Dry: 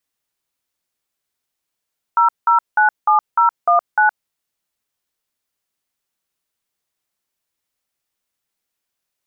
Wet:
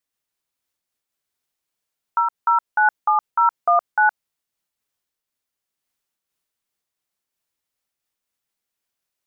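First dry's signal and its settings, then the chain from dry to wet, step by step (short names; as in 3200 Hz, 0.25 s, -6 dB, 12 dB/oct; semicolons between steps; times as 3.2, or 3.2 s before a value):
DTMF "0097019", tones 0.117 s, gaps 0.184 s, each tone -12.5 dBFS
noise-modulated level, depth 60%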